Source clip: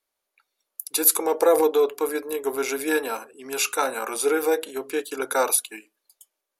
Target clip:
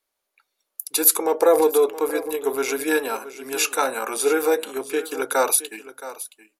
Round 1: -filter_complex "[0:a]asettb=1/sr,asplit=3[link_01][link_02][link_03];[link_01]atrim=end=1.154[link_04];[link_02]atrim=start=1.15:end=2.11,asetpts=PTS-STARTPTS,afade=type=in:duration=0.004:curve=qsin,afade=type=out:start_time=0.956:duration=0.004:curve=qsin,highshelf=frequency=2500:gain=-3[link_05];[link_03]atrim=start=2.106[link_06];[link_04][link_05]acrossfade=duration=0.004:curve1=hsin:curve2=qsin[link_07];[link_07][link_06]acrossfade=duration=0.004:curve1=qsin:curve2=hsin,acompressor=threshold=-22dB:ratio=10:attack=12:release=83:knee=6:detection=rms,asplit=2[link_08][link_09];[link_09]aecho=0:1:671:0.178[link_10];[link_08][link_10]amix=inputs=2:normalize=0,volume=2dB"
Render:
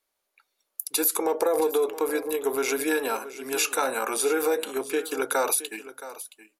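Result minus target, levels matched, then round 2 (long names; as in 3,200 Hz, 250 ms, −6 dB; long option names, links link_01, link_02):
downward compressor: peak gain reduction +11 dB
-filter_complex "[0:a]asettb=1/sr,asplit=3[link_01][link_02][link_03];[link_01]atrim=end=1.154[link_04];[link_02]atrim=start=1.15:end=2.11,asetpts=PTS-STARTPTS,afade=type=in:duration=0.004:curve=qsin,afade=type=out:start_time=0.956:duration=0.004:curve=qsin,highshelf=frequency=2500:gain=-3[link_05];[link_03]atrim=start=2.106[link_06];[link_04][link_05]acrossfade=duration=0.004:curve1=hsin:curve2=qsin[link_07];[link_07][link_06]acrossfade=duration=0.004:curve1=qsin:curve2=hsin,asplit=2[link_08][link_09];[link_09]aecho=0:1:671:0.178[link_10];[link_08][link_10]amix=inputs=2:normalize=0,volume=2dB"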